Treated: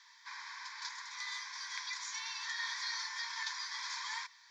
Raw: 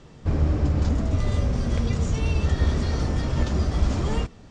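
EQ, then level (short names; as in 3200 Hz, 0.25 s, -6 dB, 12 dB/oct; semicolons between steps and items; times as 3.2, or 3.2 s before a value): steep high-pass 960 Hz 96 dB/oct; high shelf 6100 Hz +4.5 dB; fixed phaser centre 1900 Hz, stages 8; +1.5 dB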